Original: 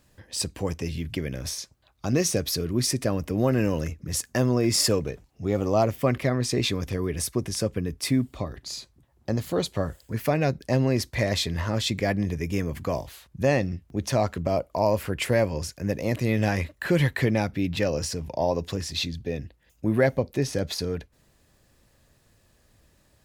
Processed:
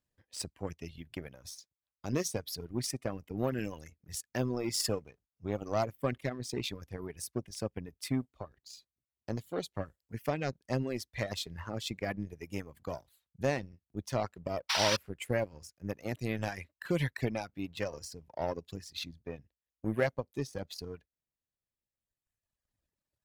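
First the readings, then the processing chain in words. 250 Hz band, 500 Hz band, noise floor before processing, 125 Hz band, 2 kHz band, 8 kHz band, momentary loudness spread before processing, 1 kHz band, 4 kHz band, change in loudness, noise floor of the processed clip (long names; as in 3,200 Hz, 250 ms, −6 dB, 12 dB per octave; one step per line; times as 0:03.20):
−11.0 dB, −10.0 dB, −63 dBFS, −12.0 dB, −8.0 dB, −10.0 dB, 9 LU, −8.0 dB, −8.0 dB, −10.0 dB, below −85 dBFS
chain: sound drawn into the spectrogram noise, 0:14.69–0:14.97, 750–6,000 Hz −21 dBFS
power curve on the samples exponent 1.4
reverb reduction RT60 1.8 s
level −4.5 dB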